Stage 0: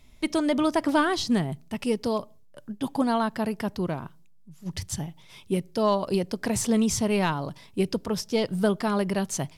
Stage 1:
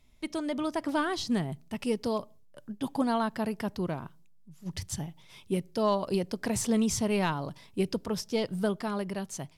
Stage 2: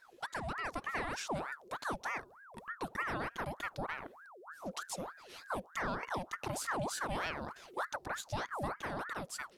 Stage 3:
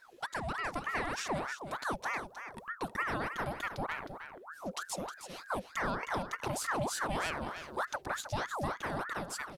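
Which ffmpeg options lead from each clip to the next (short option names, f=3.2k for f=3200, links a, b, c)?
-af "dynaudnorm=f=210:g=11:m=5dB,volume=-8.5dB"
-af "acompressor=threshold=-43dB:ratio=2,aeval=exprs='val(0)*sin(2*PI*1000*n/s+1000*0.65/3.3*sin(2*PI*3.3*n/s))':c=same,volume=3dB"
-af "aecho=1:1:313:0.335,volume=2.5dB"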